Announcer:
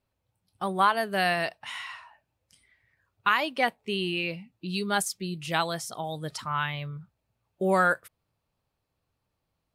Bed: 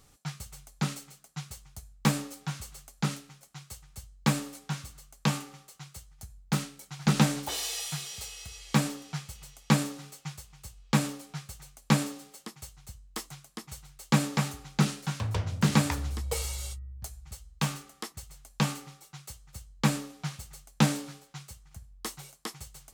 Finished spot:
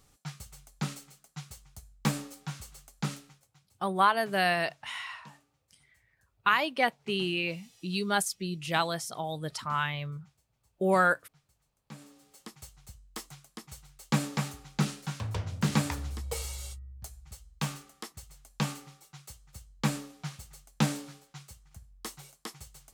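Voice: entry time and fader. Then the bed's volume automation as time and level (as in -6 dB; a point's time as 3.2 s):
3.20 s, -1.0 dB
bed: 3.28 s -3.5 dB
3.76 s -27 dB
11.85 s -27 dB
12.44 s -3.5 dB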